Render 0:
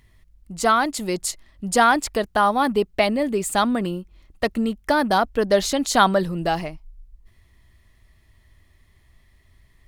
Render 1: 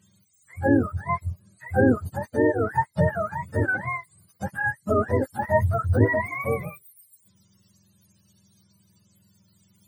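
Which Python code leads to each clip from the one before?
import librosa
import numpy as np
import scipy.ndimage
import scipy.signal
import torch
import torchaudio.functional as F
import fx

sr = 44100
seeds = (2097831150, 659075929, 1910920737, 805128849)

y = fx.octave_mirror(x, sr, pivot_hz=610.0)
y = fx.hpss(y, sr, part='harmonic', gain_db=8)
y = y * 10.0 ** (-8.0 / 20.0)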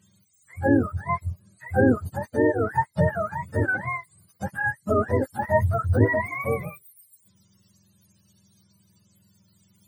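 y = x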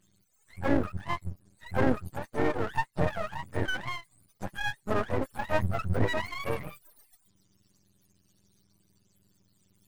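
y = np.maximum(x, 0.0)
y = y * 10.0 ** (-2.5 / 20.0)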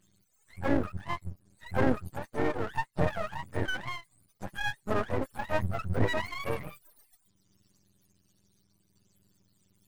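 y = fx.tremolo_shape(x, sr, shape='saw_down', hz=0.67, depth_pct=30)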